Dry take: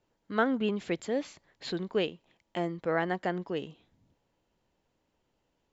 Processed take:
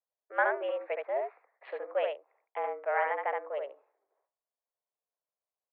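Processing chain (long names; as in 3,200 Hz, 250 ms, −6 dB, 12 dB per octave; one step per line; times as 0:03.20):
adaptive Wiener filter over 15 samples
noise gate with hold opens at −59 dBFS
on a send: single-tap delay 71 ms −3.5 dB
on the sum: single-sideband voice off tune +130 Hz 370–2,400 Hz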